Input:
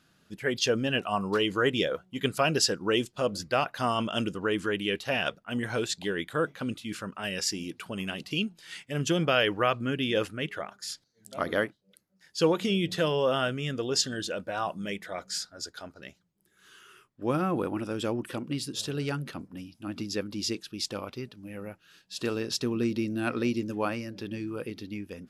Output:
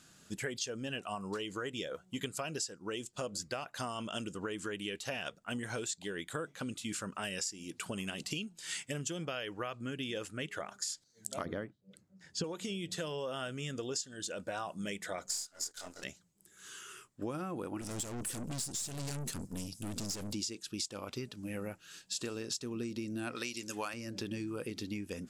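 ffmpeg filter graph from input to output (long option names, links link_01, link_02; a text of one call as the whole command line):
ffmpeg -i in.wav -filter_complex "[0:a]asettb=1/sr,asplit=3[link_01][link_02][link_03];[link_01]atrim=end=11.454[link_04];[link_02]atrim=start=11.45:end=12.44,asetpts=PTS-STARTPTS,afade=type=in:duration=0.004:curve=qsin,afade=type=out:start_time=0.986:duration=0.004:curve=qsin,highpass=94,aemphasis=mode=reproduction:type=riaa[link_05];[link_03]atrim=start=12.436[link_06];[link_04][link_05]acrossfade=duration=0.004:curve1=hsin:curve2=qsin[link_07];[link_07][link_06]acrossfade=duration=0.004:curve1=qsin:curve2=hsin,asettb=1/sr,asplit=3[link_08][link_09][link_10];[link_08]atrim=end=15.264[link_11];[link_09]atrim=start=15.26:end=16.04,asetpts=PTS-STARTPTS,afade=type=in:duration=0.004:curve=qsin,afade=type=out:start_time=0.776:duration=0.004:curve=qsin,aeval=exprs='if(lt(val(0),0),0.251*val(0),val(0))':channel_layout=same,bass=frequency=250:gain=-7,treble=frequency=4000:gain=7,asplit=2[link_12][link_13];[link_13]adelay=23,volume=-2dB[link_14];[link_12][link_14]amix=inputs=2:normalize=0,atrim=end_sample=34398[link_15];[link_10]atrim=start=16.036[link_16];[link_11][link_15]acrossfade=duration=0.004:curve1=hsin:curve2=qsin[link_17];[link_17][link_16]acrossfade=duration=0.004:curve1=qsin:curve2=hsin,asettb=1/sr,asplit=3[link_18][link_19][link_20];[link_18]atrim=end=17.814[link_21];[link_19]atrim=start=17.81:end=20.33,asetpts=PTS-STARTPTS,afade=type=in:duration=0.004:curve=qsin,afade=type=out:start_time=2.516:duration=0.004:curve=qsin,bass=frequency=250:gain=10,treble=frequency=4000:gain=14,aeval=exprs='(tanh(70.8*val(0)+0.7)-tanh(0.7))/70.8':channel_layout=same[link_22];[link_20]atrim=start=20.326[link_23];[link_21][link_22]acrossfade=duration=0.004:curve1=hsin:curve2=qsin[link_24];[link_24][link_23]acrossfade=duration=0.004:curve1=qsin:curve2=hsin,asettb=1/sr,asplit=3[link_25][link_26][link_27];[link_25]atrim=end=23.354[link_28];[link_26]atrim=start=23.35:end=23.94,asetpts=PTS-STARTPTS,afade=type=in:duration=0.004:curve=qsin,afade=type=out:start_time=0.586:duration=0.004:curve=qsin,tiltshelf=frequency=720:gain=-9.5,asoftclip=type=hard:threshold=-15.5dB[link_29];[link_27]atrim=start=23.936[link_30];[link_28][link_29]acrossfade=duration=0.004:curve1=hsin:curve2=qsin[link_31];[link_31][link_30]acrossfade=duration=0.004:curve1=qsin:curve2=hsin,equalizer=frequency=7600:width_type=o:width=0.81:gain=14,acompressor=threshold=-37dB:ratio=16,volume=2dB" out.wav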